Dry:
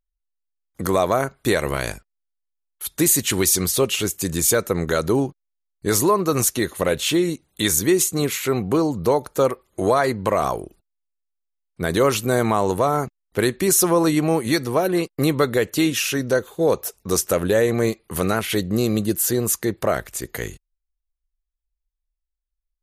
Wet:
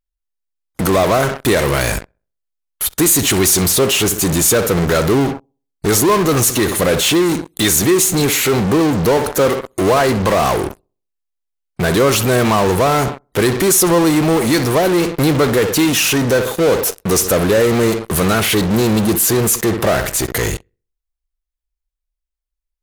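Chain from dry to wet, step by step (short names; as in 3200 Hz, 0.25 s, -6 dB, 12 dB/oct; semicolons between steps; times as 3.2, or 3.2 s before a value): darkening echo 64 ms, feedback 37%, low-pass 2500 Hz, level -17 dB; in parallel at -4.5 dB: fuzz box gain 43 dB, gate -47 dBFS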